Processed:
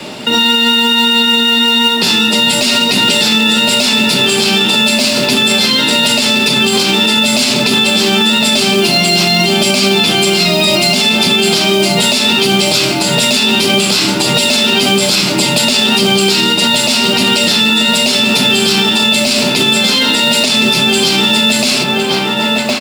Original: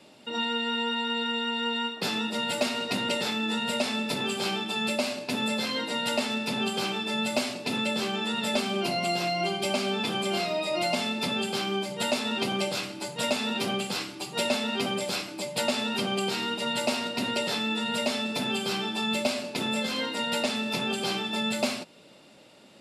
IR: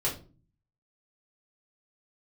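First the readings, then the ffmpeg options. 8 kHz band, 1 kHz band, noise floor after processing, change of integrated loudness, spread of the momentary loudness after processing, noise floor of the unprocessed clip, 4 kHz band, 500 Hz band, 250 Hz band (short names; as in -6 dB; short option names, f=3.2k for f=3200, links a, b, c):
+21.5 dB, +14.0 dB, -14 dBFS, +19.0 dB, 2 LU, -53 dBFS, +21.5 dB, +15.0 dB, +17.0 dB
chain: -filter_complex "[0:a]acrossover=split=340|2700[a][b][c];[a]acompressor=threshold=-44dB:ratio=4[d];[d][b][c]amix=inputs=3:normalize=0,asplit=2[e][f];[f]adelay=1061,lowpass=f=3.1k:p=1,volume=-7.5dB,asplit=2[g][h];[h]adelay=1061,lowpass=f=3.1k:p=1,volume=0.48,asplit=2[i][j];[j]adelay=1061,lowpass=f=3.1k:p=1,volume=0.48,asplit=2[k][l];[l]adelay=1061,lowpass=f=3.1k:p=1,volume=0.48,asplit=2[m][n];[n]adelay=1061,lowpass=f=3.1k:p=1,volume=0.48,asplit=2[o][p];[p]adelay=1061,lowpass=f=3.1k:p=1,volume=0.48[q];[e][g][i][k][m][o][q]amix=inputs=7:normalize=0,asplit=2[r][s];[1:a]atrim=start_sample=2205[t];[s][t]afir=irnorm=-1:irlink=0,volume=-17.5dB[u];[r][u]amix=inputs=2:normalize=0,acrusher=bits=5:mode=log:mix=0:aa=0.000001,equalizer=f=530:t=o:w=1.2:g=-4,acrossover=split=320|3000[v][w][x];[w]acompressor=threshold=-46dB:ratio=3[y];[v][y][x]amix=inputs=3:normalize=0,highshelf=f=10k:g=-7.5,alimiter=level_in=29dB:limit=-1dB:release=50:level=0:latency=1,volume=-1dB"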